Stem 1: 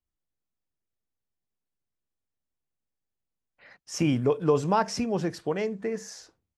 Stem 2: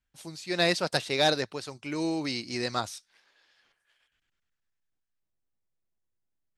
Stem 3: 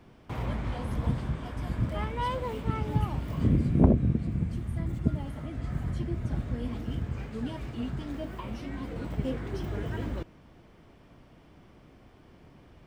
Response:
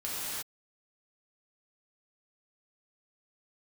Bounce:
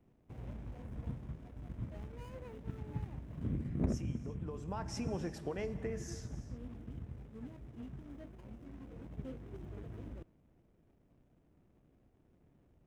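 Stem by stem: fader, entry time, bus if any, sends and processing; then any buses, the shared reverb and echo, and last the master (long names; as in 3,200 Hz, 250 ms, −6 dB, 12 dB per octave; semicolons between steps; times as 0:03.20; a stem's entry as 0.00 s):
0:04.32 −18 dB → 0:04.95 −7.5 dB, 0.00 s, send −16.5 dB, downward compressor 5 to 1, threshold −29 dBFS, peak gain reduction 11 dB
muted
−13.0 dB, 0.00 s, no send, running median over 41 samples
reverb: on, pre-delay 3 ms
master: parametric band 4,400 Hz −7.5 dB 0.33 octaves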